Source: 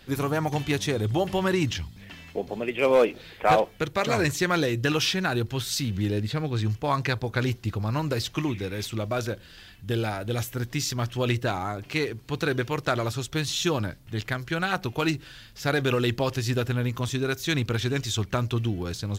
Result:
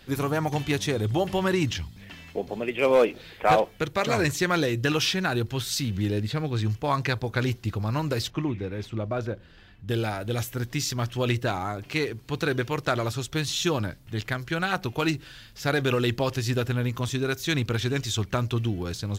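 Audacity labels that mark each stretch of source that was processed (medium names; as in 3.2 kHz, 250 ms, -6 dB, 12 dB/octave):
8.300000	9.890000	low-pass 1.2 kHz 6 dB/octave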